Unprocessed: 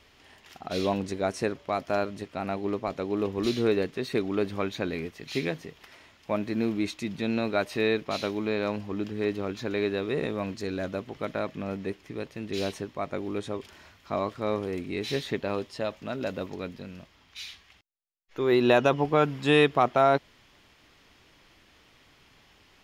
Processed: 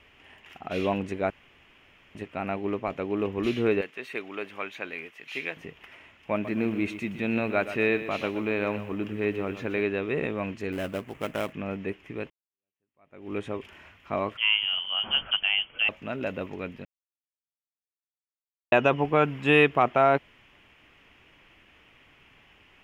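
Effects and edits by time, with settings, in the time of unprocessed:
0:01.30–0:02.15: fill with room tone
0:03.81–0:05.57: high-pass filter 1,100 Hz 6 dB per octave
0:06.32–0:09.82: feedback echo at a low word length 124 ms, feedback 35%, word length 8 bits, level −11.5 dB
0:10.72–0:11.53: sample-rate reduction 4,600 Hz, jitter 20%
0:12.30–0:13.33: fade in exponential
0:14.37–0:15.89: voice inversion scrambler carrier 3,300 Hz
0:16.85–0:18.72: silence
whole clip: high shelf with overshoot 3,400 Hz −7 dB, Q 3

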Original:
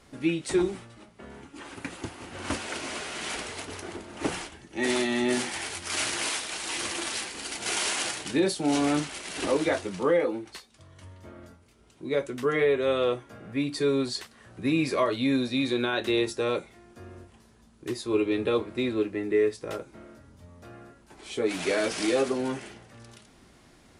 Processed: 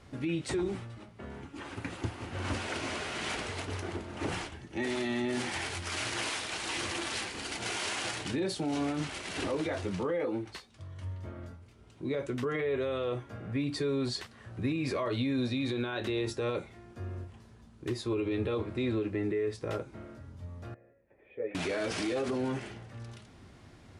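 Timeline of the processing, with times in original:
0:20.74–0:21.55: formant resonators in series e
whole clip: high-shelf EQ 7,400 Hz −11.5 dB; brickwall limiter −25 dBFS; parametric band 99 Hz +10 dB 0.91 octaves

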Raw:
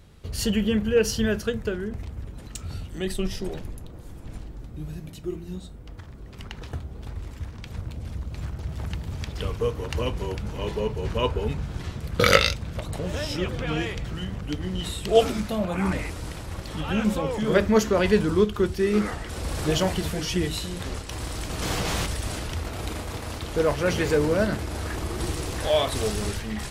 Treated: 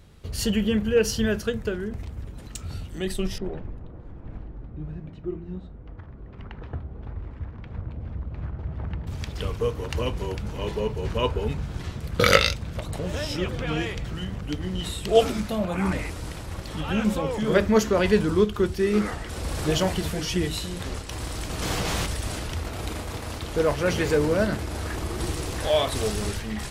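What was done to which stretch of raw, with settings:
0:03.38–0:09.07: low-pass filter 1,700 Hz

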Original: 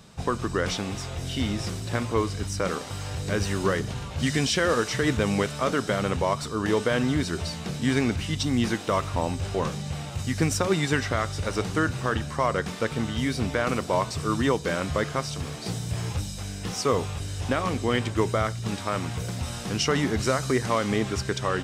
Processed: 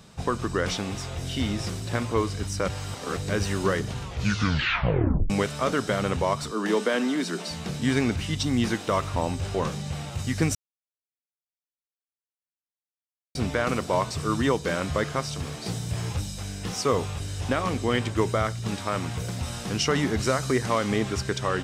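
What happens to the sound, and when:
0:02.68–0:03.17: reverse
0:04.01: tape stop 1.29 s
0:06.51–0:07.51: Butterworth high-pass 170 Hz 96 dB per octave
0:10.55–0:13.35: silence

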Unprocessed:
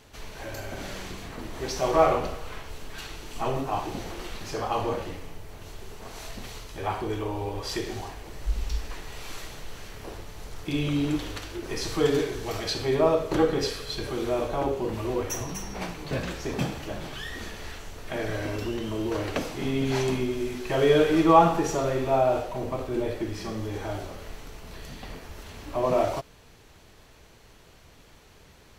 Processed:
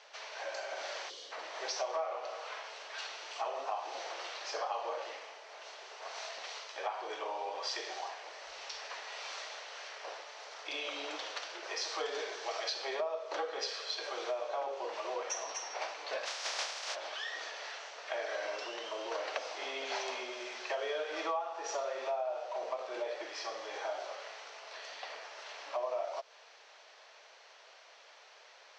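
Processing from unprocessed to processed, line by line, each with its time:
0:01.10–0:01.32: gain on a spectral selection 590–2,800 Hz −14 dB
0:16.25–0:16.94: compressing power law on the bin magnitudes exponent 0.17
whole clip: elliptic band-pass filter 580–5,700 Hz, stop band 50 dB; dynamic equaliser 2,100 Hz, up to −3 dB, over −44 dBFS, Q 0.71; downward compressor 8 to 1, threshold −34 dBFS; level +1 dB

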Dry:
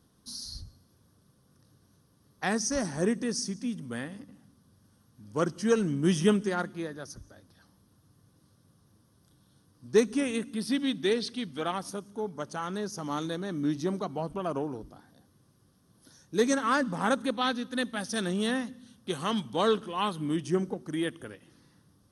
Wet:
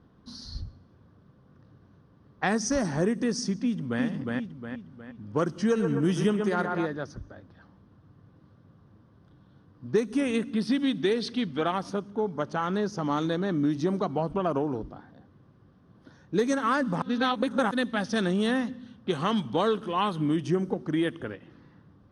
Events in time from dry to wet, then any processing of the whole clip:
0:03.62–0:04.03: delay throw 360 ms, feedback 45%, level −2.5 dB
0:05.51–0:06.86: feedback echo with a band-pass in the loop 124 ms, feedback 67%, band-pass 900 Hz, level −5 dB
0:17.02–0:17.71: reverse
whole clip: low-pass that shuts in the quiet parts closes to 2,500 Hz, open at −22.5 dBFS; high-shelf EQ 4,100 Hz −8.5 dB; downward compressor 4 to 1, threshold −30 dBFS; level +7.5 dB

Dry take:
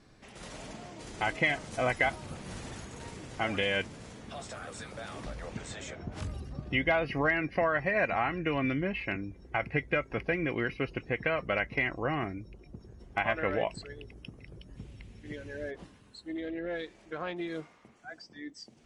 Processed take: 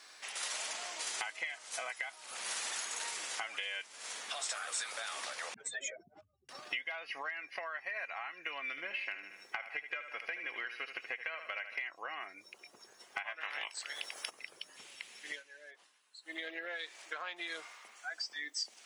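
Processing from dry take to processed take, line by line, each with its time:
0:05.54–0:06.49: expanding power law on the bin magnitudes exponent 2.9
0:08.66–0:11.77: repeating echo 75 ms, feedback 42%, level −11 dB
0:13.40–0:14.29: ceiling on every frequency bin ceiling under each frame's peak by 23 dB
0:15.29–0:16.35: duck −17 dB, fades 0.14 s
whole clip: high-pass filter 870 Hz 12 dB per octave; downward compressor 16 to 1, threshold −46 dBFS; spectral tilt +2.5 dB per octave; level +7.5 dB

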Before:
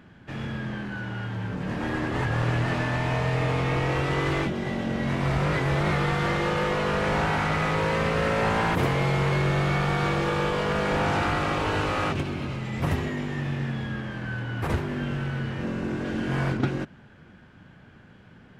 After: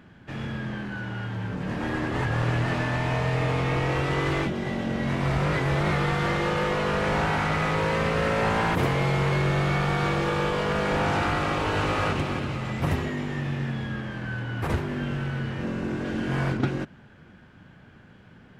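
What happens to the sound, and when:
0:11.43–0:12.06: delay throw 330 ms, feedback 55%, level −7 dB

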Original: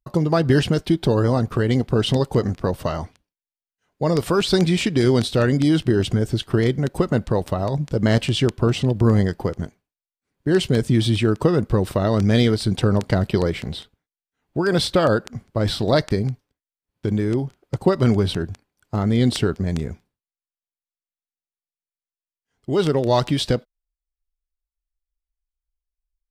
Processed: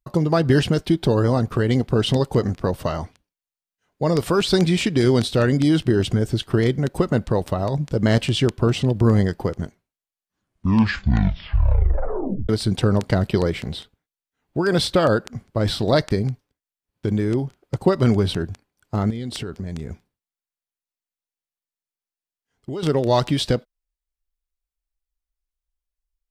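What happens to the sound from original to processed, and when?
0:09.62: tape stop 2.87 s
0:19.10–0:22.83: downward compressor 5 to 1, threshold −26 dBFS

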